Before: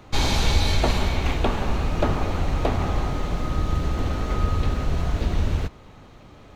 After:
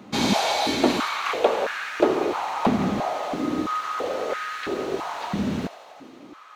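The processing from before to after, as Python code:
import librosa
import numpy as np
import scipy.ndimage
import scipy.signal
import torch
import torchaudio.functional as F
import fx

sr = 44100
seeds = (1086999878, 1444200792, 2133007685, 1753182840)

y = fx.echo_thinned(x, sr, ms=85, feedback_pct=78, hz=850.0, wet_db=-13)
y = fx.filter_held_highpass(y, sr, hz=3.0, low_hz=210.0, high_hz=1600.0)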